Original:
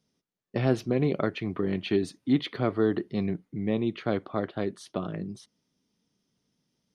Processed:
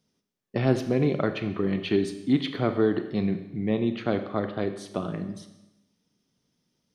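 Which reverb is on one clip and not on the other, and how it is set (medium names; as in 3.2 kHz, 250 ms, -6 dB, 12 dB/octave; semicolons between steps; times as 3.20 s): Schroeder reverb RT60 0.95 s, combs from 30 ms, DRR 8.5 dB; trim +1.5 dB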